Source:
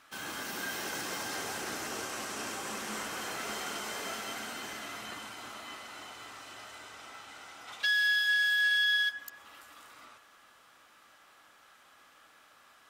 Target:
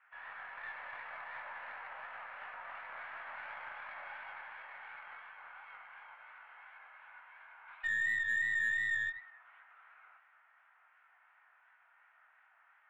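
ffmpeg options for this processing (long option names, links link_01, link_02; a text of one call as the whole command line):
ffmpeg -i in.wav -af "highpass=frequency=540:width_type=q:width=0.5412,highpass=frequency=540:width_type=q:width=1.307,lowpass=frequency=2200:width_type=q:width=0.5176,lowpass=frequency=2200:width_type=q:width=0.7071,lowpass=frequency=2200:width_type=q:width=1.932,afreqshift=160,flanger=delay=19:depth=7.3:speed=2.8,aeval=exprs='0.075*(cos(1*acos(clip(val(0)/0.075,-1,1)))-cos(1*PI/2))+0.00266*(cos(6*acos(clip(val(0)/0.075,-1,1)))-cos(6*PI/2))':channel_layout=same,volume=-2.5dB" out.wav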